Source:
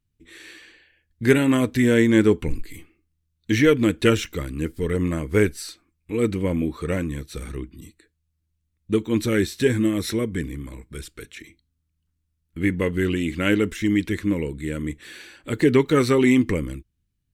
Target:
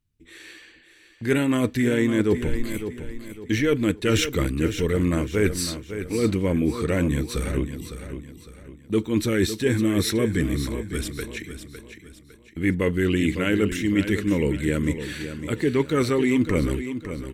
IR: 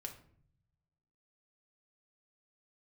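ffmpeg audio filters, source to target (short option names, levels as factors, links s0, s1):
-af "agate=range=0.447:threshold=0.00891:ratio=16:detection=peak,areverse,acompressor=threshold=0.0562:ratio=6,areverse,aecho=1:1:556|1112|1668|2224:0.316|0.12|0.0457|0.0174,volume=2.11"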